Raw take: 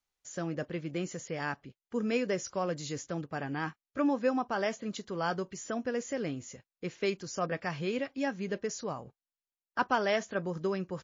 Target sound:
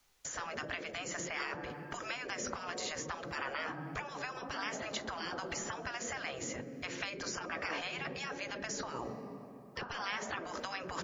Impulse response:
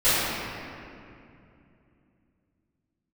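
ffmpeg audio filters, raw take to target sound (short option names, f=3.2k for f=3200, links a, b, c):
-filter_complex "[0:a]acompressor=threshold=-33dB:ratio=6,asplit=2[a][b];[1:a]atrim=start_sample=2205[c];[b][c]afir=irnorm=-1:irlink=0,volume=-39dB[d];[a][d]amix=inputs=2:normalize=0,acrossover=split=170|2000[e][f][g];[e]acompressor=threshold=-55dB:ratio=4[h];[f]acompressor=threshold=-39dB:ratio=4[i];[g]acompressor=threshold=-60dB:ratio=4[j];[h][i][j]amix=inputs=3:normalize=0,afftfilt=real='re*lt(hypot(re,im),0.0141)':imag='im*lt(hypot(re,im),0.0141)':win_size=1024:overlap=0.75,volume=16dB"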